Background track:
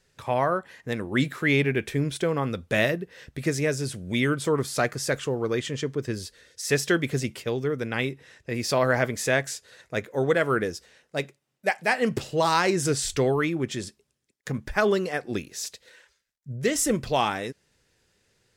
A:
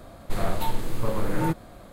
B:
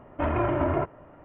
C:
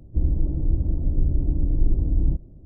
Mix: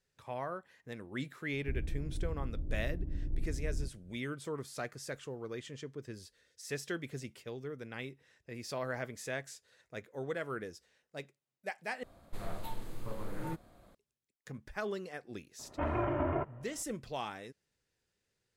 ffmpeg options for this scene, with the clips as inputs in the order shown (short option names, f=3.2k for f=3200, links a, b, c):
-filter_complex "[0:a]volume=-15.5dB,asplit=2[a][b];[a]atrim=end=12.034[c];[1:a]atrim=end=1.92,asetpts=PTS-STARTPTS,volume=-14.5dB[d];[b]atrim=start=13.946[e];[3:a]atrim=end=2.65,asetpts=PTS-STARTPTS,volume=-15.5dB,afade=t=in:d=0.004:c=hsin,afade=t=out:st=2.646:d=0.004:c=hsin,adelay=1520[f];[2:a]atrim=end=1.24,asetpts=PTS-STARTPTS,volume=-7.5dB,afade=t=in:d=0.004:c=hsin,afade=t=out:st=1.236:d=0.004:c=hsin,adelay=15590[g];[c][d]acrossfade=d=0.004:c1=hsin:c2=hsin[h];[h][e]acrossfade=d=0.004:c1=hsin:c2=hsin[i];[i][f][g]amix=inputs=3:normalize=0"